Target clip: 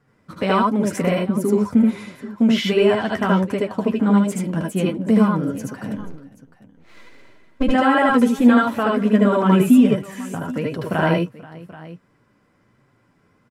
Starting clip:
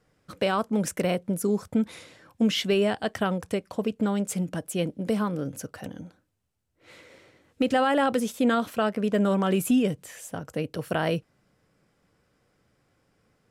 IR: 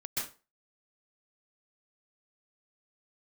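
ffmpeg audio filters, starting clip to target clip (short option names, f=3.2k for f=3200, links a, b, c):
-filter_complex "[0:a]equalizer=f=125:t=o:w=1:g=9,equalizer=f=250:t=o:w=1:g=11,equalizer=f=1k:t=o:w=1:g=9,equalizer=f=2k:t=o:w=1:g=6,asplit=3[a][b][c];[a]afade=t=out:st=5.96:d=0.02[d];[b]aeval=exprs='max(val(0),0)':c=same,afade=t=in:st=5.96:d=0.02,afade=t=out:st=7.62:d=0.02[e];[c]afade=t=in:st=7.62:d=0.02[f];[d][e][f]amix=inputs=3:normalize=0,flanger=delay=6.7:depth=6.2:regen=30:speed=1.4:shape=triangular,asplit=2[g][h];[h]aecho=0:1:74|76|79|482|781:0.631|0.668|0.596|0.106|0.133[i];[g][i]amix=inputs=2:normalize=0"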